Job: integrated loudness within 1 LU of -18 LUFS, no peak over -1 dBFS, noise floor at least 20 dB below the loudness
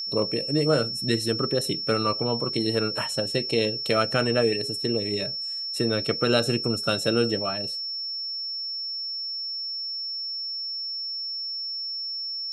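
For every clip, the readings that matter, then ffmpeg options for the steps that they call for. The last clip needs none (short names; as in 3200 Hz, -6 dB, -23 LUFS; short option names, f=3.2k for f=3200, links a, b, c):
steady tone 5400 Hz; tone level -29 dBFS; loudness -25.5 LUFS; peak -8.0 dBFS; loudness target -18.0 LUFS
-> -af "bandreject=f=5.4k:w=30"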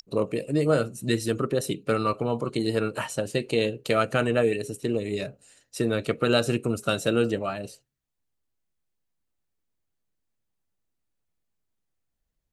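steady tone none; loudness -26.5 LUFS; peak -8.0 dBFS; loudness target -18.0 LUFS
-> -af "volume=8.5dB,alimiter=limit=-1dB:level=0:latency=1"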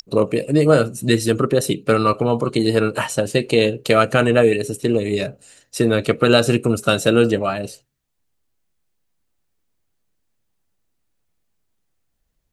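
loudness -18.0 LUFS; peak -1.0 dBFS; noise floor -71 dBFS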